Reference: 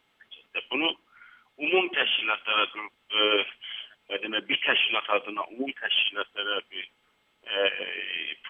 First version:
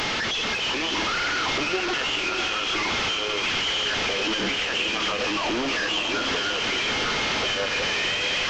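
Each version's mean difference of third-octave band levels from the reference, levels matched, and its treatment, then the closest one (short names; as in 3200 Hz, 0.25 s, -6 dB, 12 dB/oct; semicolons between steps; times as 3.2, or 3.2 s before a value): 16.0 dB: delta modulation 32 kbps, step -20 dBFS; limiter -18.5 dBFS, peak gain reduction 9 dB; diffused feedback echo 0.589 s, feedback 52%, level -5.5 dB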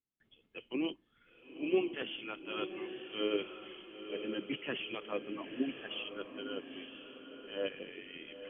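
6.5 dB: gate with hold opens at -56 dBFS; EQ curve 140 Hz 0 dB, 310 Hz -3 dB, 900 Hz -19 dB; on a send: diffused feedback echo 0.955 s, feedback 40%, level -8.5 dB; on the sum: gain +1 dB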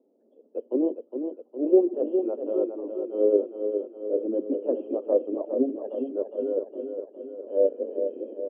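12.5 dB: elliptic band-pass 240–580 Hz, stop band 60 dB; in parallel at +1 dB: compressor, threshold -41 dBFS, peak gain reduction 19 dB; on the sum: feedback echo 0.41 s, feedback 58%, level -7 dB; gain +6 dB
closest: second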